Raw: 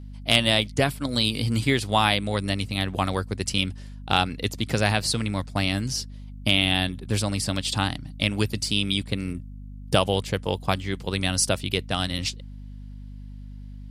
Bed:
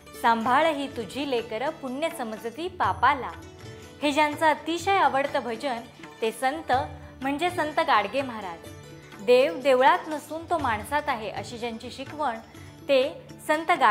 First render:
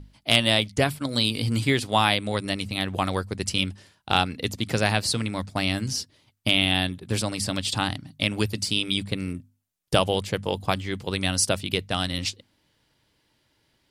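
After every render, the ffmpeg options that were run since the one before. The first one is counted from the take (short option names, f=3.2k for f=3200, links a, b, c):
-af "bandreject=f=50:t=h:w=6,bandreject=f=100:t=h:w=6,bandreject=f=150:t=h:w=6,bandreject=f=200:t=h:w=6,bandreject=f=250:t=h:w=6"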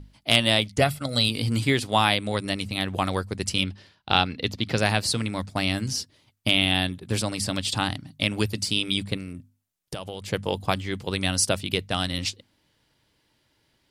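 -filter_complex "[0:a]asettb=1/sr,asplit=3[a][b][c];[a]atrim=end=0.814[d];[b]atrim=start=0.81:end=1.29,asetpts=PTS-STARTPTS,afade=t=in:d=0.004:c=qsin,afade=t=out:st=0.476:d=0.004:c=qsin,aecho=1:1:1.5:0.55,atrim=end_sample=21168[e];[c]atrim=start=1.286[f];[d][e]acrossfade=d=0.004:c1=hsin:c2=qsin[g];[g][f]acrossfade=d=0.004:c1=qsin:c2=hsin,asettb=1/sr,asplit=3[h][i][j];[h]atrim=end=3.644[k];[i]atrim=start=3.64:end=4.78,asetpts=PTS-STARTPTS,afade=t=in:d=0.004:c=qsin,afade=t=out:st=1.136:d=0.004:c=qsin,highshelf=f=6k:t=q:w=1.5:g=-9.5[l];[j]atrim=start=4.776[m];[k][l]acrossfade=d=0.004:c1=hsin:c2=qsin[n];[n][m]acrossfade=d=0.004:c1=qsin:c2=hsin,asettb=1/sr,asplit=3[o][p][q];[o]atrim=end=9.174[r];[p]atrim=start=9.17:end=10.28,asetpts=PTS-STARTPTS,afade=t=in:d=0.004:c=qsin,afade=t=out:st=1.106:d=0.004:c=qsin,acompressor=threshold=-31dB:ratio=5:attack=3.2:release=140:knee=1:detection=peak[s];[q]atrim=start=10.276[t];[r][s]acrossfade=d=0.004:c1=hsin:c2=qsin[u];[u][t]acrossfade=d=0.004:c1=qsin:c2=hsin"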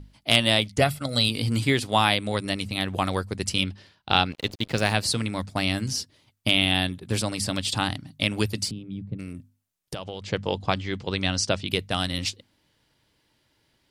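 -filter_complex "[0:a]asettb=1/sr,asplit=3[a][b][c];[a]atrim=end=4.324[d];[b]atrim=start=4.32:end=4.94,asetpts=PTS-STARTPTS,afade=t=in:d=0.004:c=qsin,afade=t=out:st=0.616:d=0.004:c=qsin,aeval=exprs='sgn(val(0))*max(abs(val(0))-0.0126,0)':c=same[e];[c]atrim=start=4.936[f];[d][e]acrossfade=d=0.004:c1=hsin:c2=qsin[g];[g][f]acrossfade=d=0.004:c1=qsin:c2=hsin,asettb=1/sr,asplit=3[h][i][j];[h]atrim=end=8.714[k];[i]atrim=start=8.71:end=9.19,asetpts=PTS-STARTPTS,afade=t=in:d=0.004:c=qsin,afade=t=out:st=0.476:d=0.004:c=qsin,bandpass=f=140:t=q:w=1.4[l];[j]atrim=start=9.186[m];[k][l]acrossfade=d=0.004:c1=hsin:c2=qsin[n];[n][m]acrossfade=d=0.004:c1=qsin:c2=hsin,asettb=1/sr,asplit=3[o][p][q];[o]atrim=end=9.954[r];[p]atrim=start=9.95:end=11.68,asetpts=PTS-STARTPTS,afade=t=in:d=0.004:c=qsin,afade=t=out:st=1.726:d=0.004:c=qsin,lowpass=f=6.6k:w=0.5412,lowpass=f=6.6k:w=1.3066[s];[q]atrim=start=11.676[t];[r][s]acrossfade=d=0.004:c1=hsin:c2=qsin[u];[u][t]acrossfade=d=0.004:c1=qsin:c2=hsin"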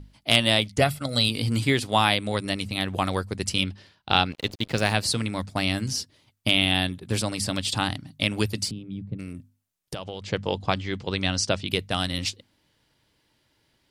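-af anull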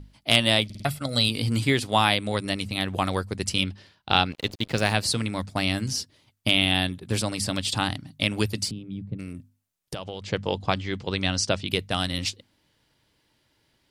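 -filter_complex "[0:a]asplit=5[a][b][c][d][e];[a]atrim=end=0.702[f];[b]atrim=start=0.648:end=0.702[g];[c]atrim=start=0.648:end=0.702[h];[d]atrim=start=0.648:end=0.702[i];[e]atrim=start=0.848[j];[f][g]acrossfade=d=0.004:c1=hsin:c2=hsin[k];[k][h]acrossfade=d=0.004:c1=hsin:c2=hsin[l];[l][i]acrossfade=d=0.004:c1=hsin:c2=hsin[m];[m][j]acrossfade=d=0.004:c1=hsin:c2=hsin"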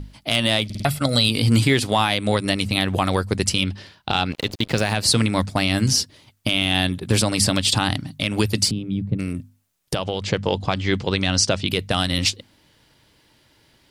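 -filter_complex "[0:a]asplit=2[a][b];[b]acontrast=37,volume=1.5dB[c];[a][c]amix=inputs=2:normalize=0,alimiter=limit=-6.5dB:level=0:latency=1:release=167"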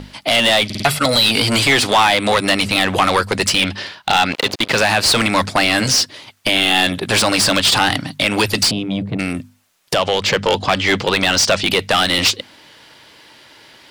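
-filter_complex "[0:a]acrossover=split=840|6500[a][b][c];[a]asoftclip=type=tanh:threshold=-20dB[d];[d][b][c]amix=inputs=3:normalize=0,asplit=2[e][f];[f]highpass=f=720:p=1,volume=23dB,asoftclip=type=tanh:threshold=-3dB[g];[e][g]amix=inputs=2:normalize=0,lowpass=f=4.1k:p=1,volume=-6dB"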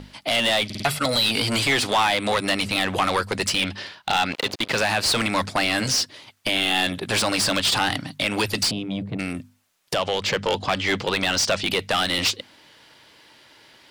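-af "volume=-7dB"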